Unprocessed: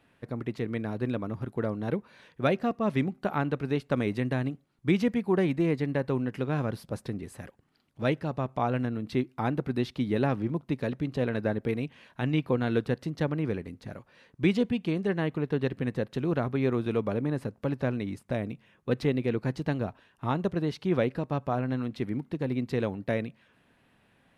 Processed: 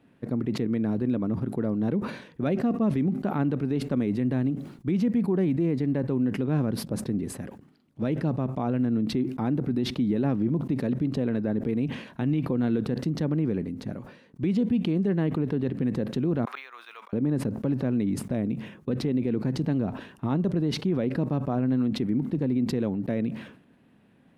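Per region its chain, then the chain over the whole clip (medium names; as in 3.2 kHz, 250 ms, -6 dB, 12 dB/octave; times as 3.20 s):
16.45–17.13 s: high-pass 1.1 kHz 24 dB/octave + slow attack 199 ms + decimation joined by straight lines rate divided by 2×
whole clip: peaking EQ 230 Hz +13 dB 2.2 oct; peak limiter -14 dBFS; decay stretcher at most 89 dB/s; trim -3.5 dB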